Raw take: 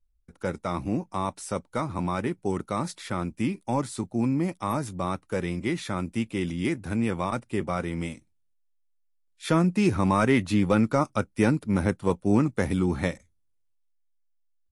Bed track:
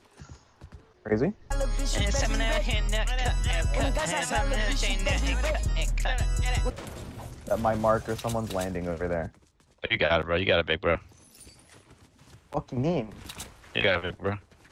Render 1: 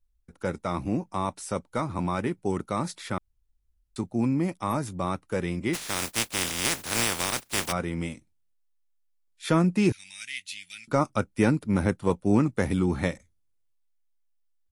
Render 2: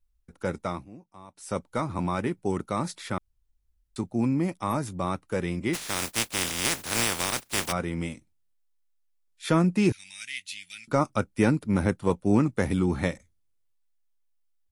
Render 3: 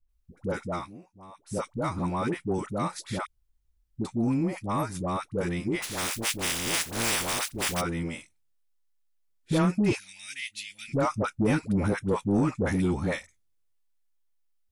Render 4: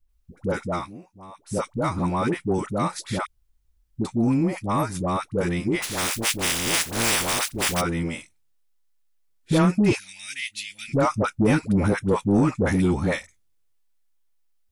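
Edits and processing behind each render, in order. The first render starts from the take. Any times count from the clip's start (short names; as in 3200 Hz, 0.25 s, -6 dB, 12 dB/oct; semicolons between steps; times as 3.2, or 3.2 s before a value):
3.18–3.96 room tone; 5.73–7.71 spectral contrast lowered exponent 0.22; 9.92–10.88 inverse Chebyshev high-pass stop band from 1200 Hz
0.66–1.54 dip -19 dB, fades 0.20 s
dispersion highs, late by 90 ms, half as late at 620 Hz; soft clip -16 dBFS, distortion -18 dB
gain +5 dB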